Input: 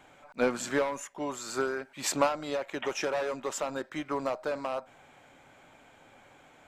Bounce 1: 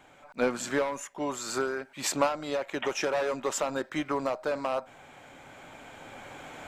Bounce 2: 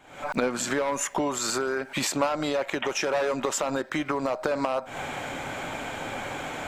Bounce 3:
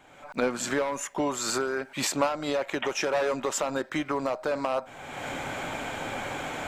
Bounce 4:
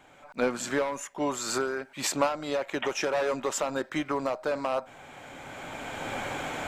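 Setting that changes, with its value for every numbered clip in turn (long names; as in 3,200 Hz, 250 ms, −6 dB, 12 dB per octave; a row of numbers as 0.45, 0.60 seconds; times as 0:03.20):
camcorder AGC, rising by: 5.3, 85, 34, 13 dB per second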